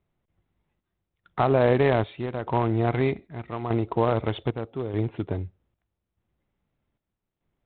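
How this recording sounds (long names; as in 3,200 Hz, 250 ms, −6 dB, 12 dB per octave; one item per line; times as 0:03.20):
chopped level 0.81 Hz, depth 60%, duty 65%
IMA ADPCM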